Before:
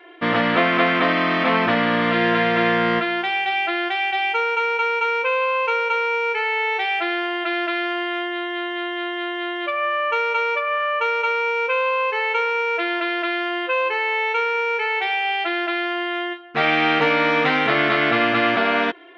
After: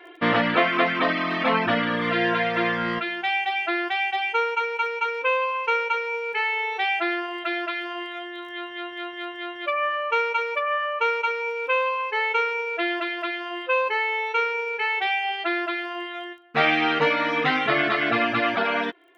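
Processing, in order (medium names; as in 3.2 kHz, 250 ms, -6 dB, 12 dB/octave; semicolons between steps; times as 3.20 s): crackle 23 per s -44 dBFS; reverb removal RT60 2 s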